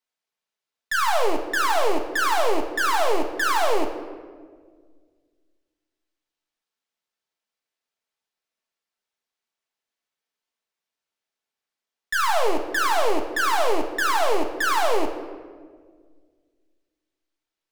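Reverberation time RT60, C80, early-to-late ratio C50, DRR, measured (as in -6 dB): 1.7 s, 9.5 dB, 7.5 dB, 3.0 dB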